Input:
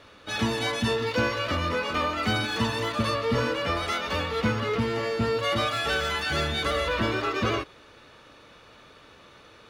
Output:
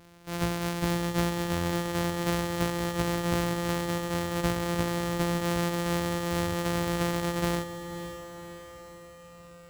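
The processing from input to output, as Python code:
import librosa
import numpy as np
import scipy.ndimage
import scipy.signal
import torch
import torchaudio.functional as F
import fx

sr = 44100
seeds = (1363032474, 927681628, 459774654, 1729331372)

y = np.r_[np.sort(x[:len(x) // 256 * 256].reshape(-1, 256), axis=1).ravel(), x[len(x) // 256 * 256:]]
y = fx.echo_diffused(y, sr, ms=549, feedback_pct=56, wet_db=-11.0)
y = y * librosa.db_to_amplitude(-3.0)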